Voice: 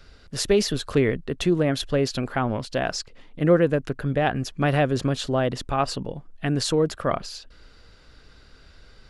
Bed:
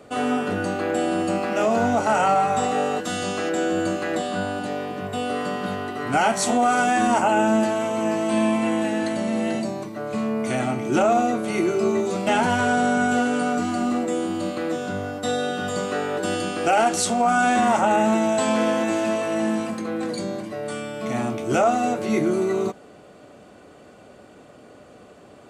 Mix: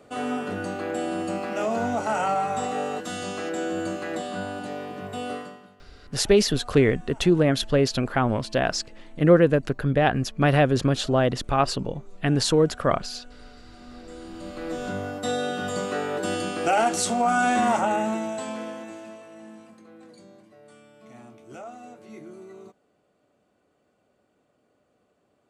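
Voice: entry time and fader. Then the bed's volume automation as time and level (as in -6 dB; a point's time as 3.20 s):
5.80 s, +2.0 dB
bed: 5.33 s -5.5 dB
5.76 s -29 dB
13.62 s -29 dB
14.86 s -2.5 dB
17.71 s -2.5 dB
19.32 s -21.5 dB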